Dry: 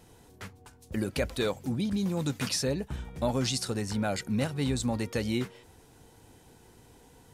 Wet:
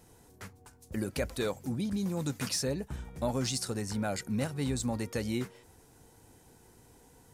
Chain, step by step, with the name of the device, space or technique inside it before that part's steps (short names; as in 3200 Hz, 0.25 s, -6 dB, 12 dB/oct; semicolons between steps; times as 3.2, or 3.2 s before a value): exciter from parts (in parallel at -4.5 dB: HPF 3100 Hz 12 dB/oct + soft clip -25.5 dBFS, distortion -16 dB + HPF 2600 Hz 12 dB/oct); on the sum: gain -3 dB